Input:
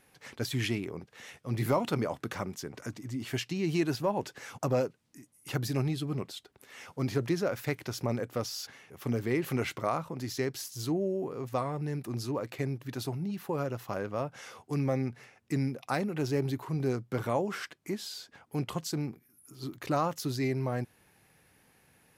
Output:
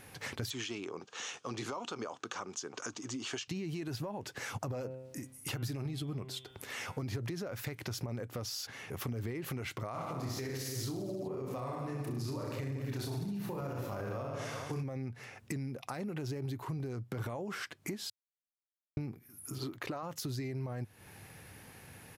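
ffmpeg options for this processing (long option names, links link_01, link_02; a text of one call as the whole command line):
ffmpeg -i in.wav -filter_complex "[0:a]asettb=1/sr,asplit=3[link_01][link_02][link_03];[link_01]atrim=end=0.504[link_04];[link_02]atrim=start=0.5:end=3.48,asetpts=PTS-STARTPTS,afade=type=in:duration=0.004:curve=qsin,afade=type=out:start_time=2.976:duration=0.004:curve=qsin,highpass=390,equalizer=frequency=600:width_type=q:width=4:gain=-6,equalizer=frequency=1200:width_type=q:width=4:gain=4,equalizer=frequency=2000:width_type=q:width=4:gain=-9,equalizer=frequency=3100:width_type=q:width=4:gain=3,equalizer=frequency=6500:width_type=q:width=4:gain=8,lowpass=frequency=7600:width=0.5412,lowpass=frequency=7600:width=1.3066[link_05];[link_03]atrim=start=3.476[link_06];[link_04][link_05]acrossfade=duration=0.004:curve1=hsin:curve2=qsin[link_07];[link_07][link_06]acrossfade=duration=0.004:curve1=qsin:curve2=hsin,asettb=1/sr,asplit=3[link_08][link_09][link_10];[link_08]atrim=end=4.714[link_11];[link_09]atrim=start=4.71:end=7.02,asetpts=PTS-STARTPTS,afade=type=in:duration=0.004:curve=qsin,afade=type=out:start_time=2.306:duration=0.004:curve=qsin,bandreject=frequency=129.9:width_type=h:width=4,bandreject=frequency=259.8:width_type=h:width=4,bandreject=frequency=389.7:width_type=h:width=4,bandreject=frequency=519.6:width_type=h:width=4,bandreject=frequency=649.5:width_type=h:width=4,bandreject=frequency=779.4:width_type=h:width=4,bandreject=frequency=909.3:width_type=h:width=4,bandreject=frequency=1039.2:width_type=h:width=4,bandreject=frequency=1169.1:width_type=h:width=4,bandreject=frequency=1299:width_type=h:width=4,bandreject=frequency=1428.9:width_type=h:width=4,bandreject=frequency=1558.8:width_type=h:width=4,bandreject=frequency=1688.7:width_type=h:width=4,bandreject=frequency=1818.6:width_type=h:width=4,bandreject=frequency=1948.5:width_type=h:width=4,bandreject=frequency=2078.4:width_type=h:width=4,bandreject=frequency=2208.3:width_type=h:width=4,bandreject=frequency=2338.2:width_type=h:width=4,bandreject=frequency=2468.1:width_type=h:width=4,bandreject=frequency=2598:width_type=h:width=4,bandreject=frequency=2727.9:width_type=h:width=4,bandreject=frequency=2857.8:width_type=h:width=4,bandreject=frequency=2987.7:width_type=h:width=4,bandreject=frequency=3117.6:width_type=h:width=4,bandreject=frequency=3247.5:width_type=h:width=4,bandreject=frequency=3377.4:width_type=h:width=4,bandreject=frequency=3507.3:width_type=h:width=4,bandreject=frequency=3637.2:width_type=h:width=4[link_12];[link_10]atrim=start=7.016[link_13];[link_11][link_12]acrossfade=duration=0.004:curve1=hsin:curve2=qsin[link_14];[link_14][link_13]acrossfade=duration=0.004:curve1=qsin:curve2=hsin,asplit=3[link_15][link_16][link_17];[link_15]afade=type=out:start_time=9.94:duration=0.02[link_18];[link_16]aecho=1:1:30|64.5|104.2|149.8|202.3|262.6|332|411.8:0.794|0.631|0.501|0.398|0.316|0.251|0.2|0.158,afade=type=in:start_time=9.94:duration=0.02,afade=type=out:start_time=14.82:duration=0.02[link_19];[link_17]afade=type=in:start_time=14.82:duration=0.02[link_20];[link_18][link_19][link_20]amix=inputs=3:normalize=0,asettb=1/sr,asplit=3[link_21][link_22][link_23];[link_21]atrim=end=19.584[link_24];[link_22]atrim=start=19.58:end=20.03,asetpts=PTS-STARTPTS,afade=type=in:duration=0.004:curve=qsin,afade=type=out:start_time=0.446:duration=0.004:curve=qsin,bass=frequency=250:gain=-10,treble=frequency=4000:gain=-7[link_25];[link_23]atrim=start=20.026[link_26];[link_24][link_25]acrossfade=duration=0.004:curve1=hsin:curve2=qsin[link_27];[link_27][link_26]acrossfade=duration=0.004:curve1=qsin:curve2=hsin,asplit=3[link_28][link_29][link_30];[link_28]atrim=end=18.1,asetpts=PTS-STARTPTS,afade=type=out:start_time=18.096:duration=0.004:curve=hsin[link_31];[link_29]atrim=start=18.1:end=18.97,asetpts=PTS-STARTPTS,volume=0[link_32];[link_30]atrim=start=18.97,asetpts=PTS-STARTPTS,afade=type=in:duration=0.004:curve=hsin[link_33];[link_31][link_32][link_33]concat=n=3:v=0:a=1,alimiter=level_in=3dB:limit=-24dB:level=0:latency=1:release=72,volume=-3dB,acompressor=threshold=-48dB:ratio=6,equalizer=frequency=100:width=2.3:gain=8,volume=10dB" out.wav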